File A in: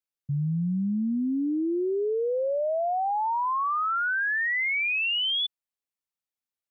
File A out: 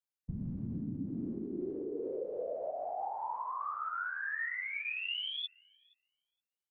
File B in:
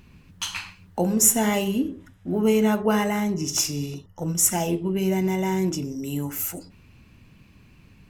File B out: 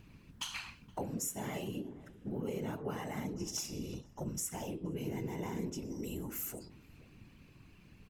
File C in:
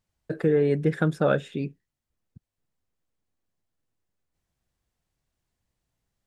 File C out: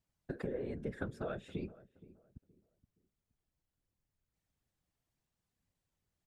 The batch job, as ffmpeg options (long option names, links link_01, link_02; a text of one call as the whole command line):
ffmpeg -i in.wav -filter_complex "[0:a]acompressor=threshold=-31dB:ratio=6,afftfilt=real='hypot(re,im)*cos(2*PI*random(0))':imag='hypot(re,im)*sin(2*PI*random(1))':win_size=512:overlap=0.75,asplit=2[link_01][link_02];[link_02]adelay=471,lowpass=frequency=940:poles=1,volume=-18dB,asplit=2[link_03][link_04];[link_04]adelay=471,lowpass=frequency=940:poles=1,volume=0.31,asplit=2[link_05][link_06];[link_06]adelay=471,lowpass=frequency=940:poles=1,volume=0.31[link_07];[link_01][link_03][link_05][link_07]amix=inputs=4:normalize=0" out.wav